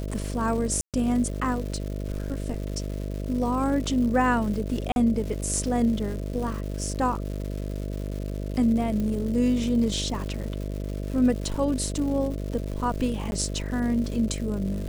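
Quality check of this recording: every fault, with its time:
mains buzz 50 Hz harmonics 13 −31 dBFS
surface crackle 300 per second −34 dBFS
0:00.81–0:00.94: drop-out 127 ms
0:04.92–0:04.96: drop-out 41 ms
0:09.00: click −19 dBFS
0:13.31–0:13.32: drop-out 11 ms

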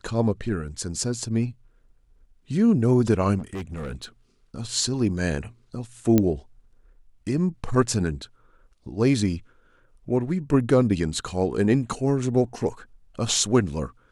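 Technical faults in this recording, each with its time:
0:03.38–0:04.05: clipping −28.5 dBFS
0:06.18: click −7 dBFS

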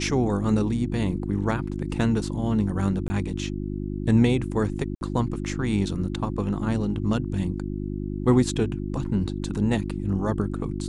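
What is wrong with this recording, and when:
mains hum 50 Hz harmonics 7 −30 dBFS
0:03.08–0:03.10: drop-out 20 ms
0:04.95–0:05.01: drop-out 61 ms

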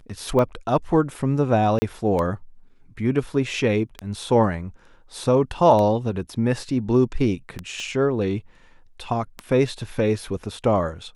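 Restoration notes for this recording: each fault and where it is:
scratch tick 33 1/3 rpm −14 dBFS
0:01.79–0:01.82: drop-out 30 ms
0:07.80: click −22 dBFS

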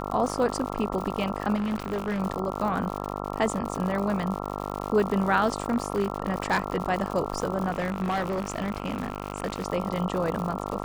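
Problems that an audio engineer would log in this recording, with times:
mains buzz 50 Hz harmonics 27 −33 dBFS
surface crackle 120 per second −31 dBFS
0:01.55–0:02.21: clipping −24.5 dBFS
0:05.70–0:06.82: clipping −17.5 dBFS
0:07.70–0:09.66: clipping −23 dBFS

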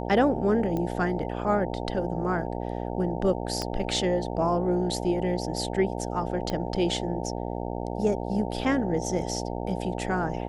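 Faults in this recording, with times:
mains buzz 60 Hz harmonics 15 −32 dBFS
0:00.77: click −19 dBFS
0:03.62: click −16 dBFS
0:06.50: click −17 dBFS

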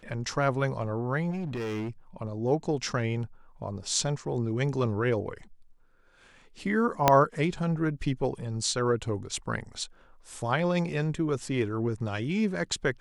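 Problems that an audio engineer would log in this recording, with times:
0:01.30–0:01.89: clipping −29.5 dBFS
0:07.08: click −4 dBFS

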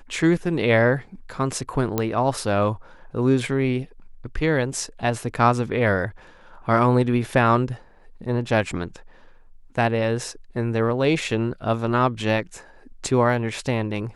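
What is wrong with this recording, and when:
0:01.98: click −8 dBFS

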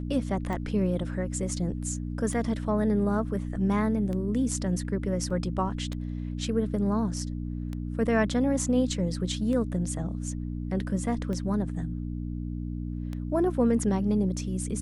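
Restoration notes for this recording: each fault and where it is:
mains hum 60 Hz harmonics 5 −33 dBFS
scratch tick 33 1/3 rpm −23 dBFS
0:05.30: drop-out 4.8 ms

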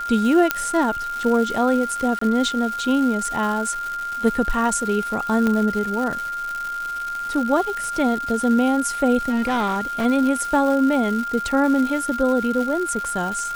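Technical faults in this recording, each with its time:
surface crackle 390 per second −27 dBFS
whistle 1,400 Hz −25 dBFS
0:00.51: click −2 dBFS
0:02.19–0:02.21: drop-out 24 ms
0:05.47: click −10 dBFS
0:09.29–0:10.06: clipping −18 dBFS

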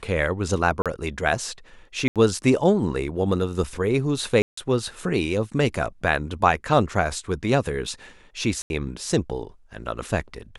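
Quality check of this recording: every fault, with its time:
0:00.82–0:00.86: drop-out 37 ms
0:02.08–0:02.16: drop-out 77 ms
0:04.42–0:04.57: drop-out 154 ms
0:08.62–0:08.70: drop-out 81 ms

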